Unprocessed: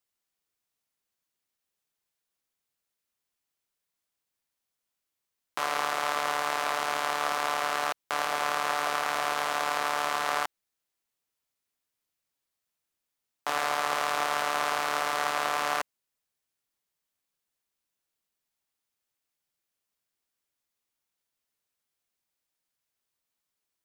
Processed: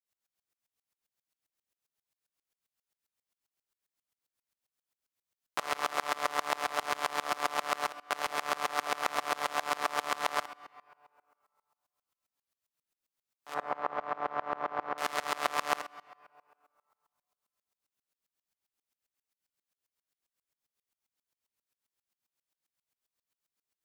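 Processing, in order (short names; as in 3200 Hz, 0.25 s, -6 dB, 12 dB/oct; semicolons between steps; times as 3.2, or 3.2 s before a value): 13.54–14.98 LPF 1200 Hz 12 dB/oct; reverb RT60 2.1 s, pre-delay 4 ms, DRR 13.5 dB; dB-ramp tremolo swelling 7.5 Hz, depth 26 dB; gain +3.5 dB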